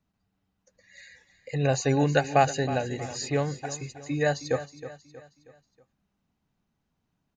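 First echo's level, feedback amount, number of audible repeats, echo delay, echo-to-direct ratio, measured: -13.5 dB, 44%, 4, 318 ms, -12.5 dB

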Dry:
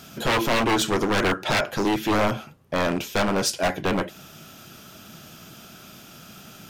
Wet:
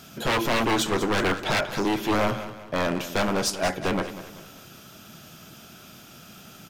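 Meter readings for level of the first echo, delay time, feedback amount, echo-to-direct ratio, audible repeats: -13.0 dB, 192 ms, 42%, -12.0 dB, 3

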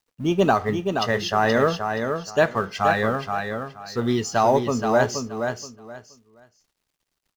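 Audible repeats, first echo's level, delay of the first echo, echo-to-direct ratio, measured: 3, -6.0 dB, 475 ms, -6.0 dB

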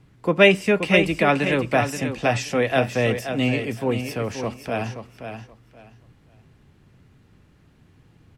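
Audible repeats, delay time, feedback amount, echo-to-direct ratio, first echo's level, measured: 2, 527 ms, 21%, -8.5 dB, -8.5 dB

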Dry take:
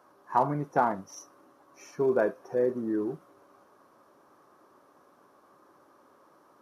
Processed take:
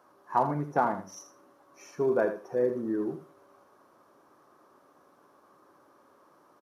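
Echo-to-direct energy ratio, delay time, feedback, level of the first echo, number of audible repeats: -10.5 dB, 81 ms, 18%, -10.5 dB, 2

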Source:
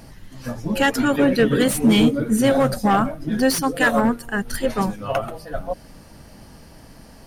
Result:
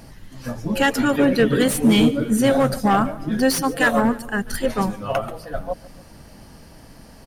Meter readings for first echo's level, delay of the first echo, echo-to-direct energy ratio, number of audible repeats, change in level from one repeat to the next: -20.5 dB, 144 ms, -19.5 dB, 2, -5.0 dB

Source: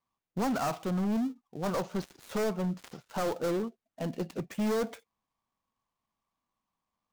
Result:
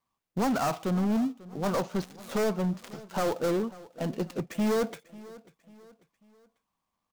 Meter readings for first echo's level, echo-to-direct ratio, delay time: -20.0 dB, -19.0 dB, 543 ms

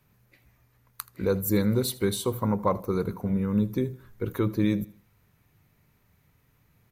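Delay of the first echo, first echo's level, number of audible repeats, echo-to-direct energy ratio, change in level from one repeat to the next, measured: 79 ms, -20.0 dB, 2, -19.5 dB, -8.5 dB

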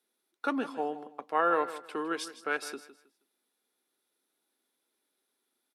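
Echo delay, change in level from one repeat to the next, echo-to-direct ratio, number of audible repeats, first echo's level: 159 ms, -12.0 dB, -13.5 dB, 2, -14.0 dB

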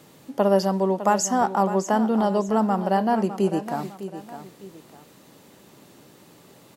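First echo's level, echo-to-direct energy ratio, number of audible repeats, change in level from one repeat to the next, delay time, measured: -12.0 dB, -11.5 dB, 2, -8.5 dB, 606 ms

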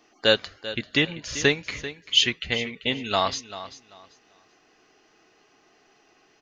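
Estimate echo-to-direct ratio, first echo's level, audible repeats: -13.5 dB, -14.0 dB, 2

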